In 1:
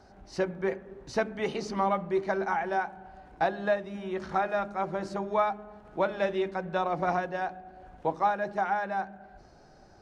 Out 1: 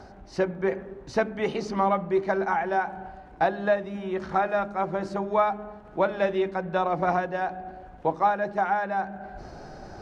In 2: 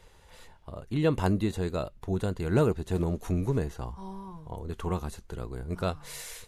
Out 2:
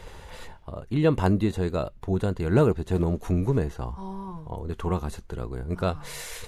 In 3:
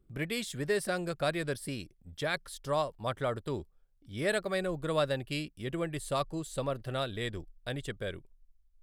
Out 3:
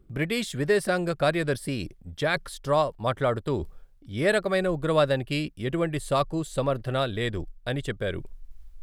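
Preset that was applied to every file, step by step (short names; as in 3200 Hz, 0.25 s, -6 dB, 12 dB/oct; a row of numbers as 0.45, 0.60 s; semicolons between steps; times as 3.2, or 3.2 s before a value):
high shelf 3700 Hz -6 dB; reverse; upward compressor, threshold -35 dBFS; reverse; match loudness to -27 LUFS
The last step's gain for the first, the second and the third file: +4.0, +4.0, +8.0 dB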